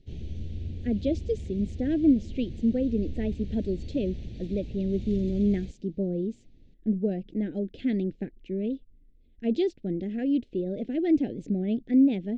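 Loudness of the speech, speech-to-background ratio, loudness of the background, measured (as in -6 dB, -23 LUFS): -28.5 LUFS, 11.0 dB, -39.5 LUFS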